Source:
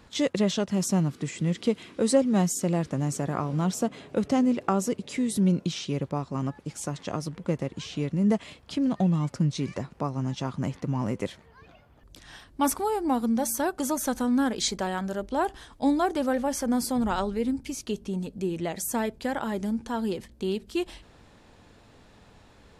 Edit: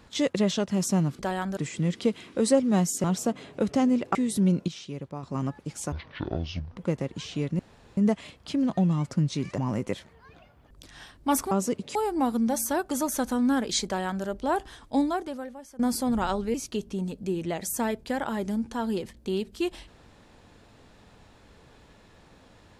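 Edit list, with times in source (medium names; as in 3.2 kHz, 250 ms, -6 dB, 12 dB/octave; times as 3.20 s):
2.66–3.60 s: delete
4.71–5.15 s: move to 12.84 s
5.68–6.23 s: gain -7.5 dB
6.92–7.38 s: speed 54%
8.20 s: insert room tone 0.38 s
9.81–10.91 s: delete
14.75–15.13 s: copy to 1.19 s
15.84–16.68 s: fade out quadratic, to -20 dB
17.43–17.69 s: delete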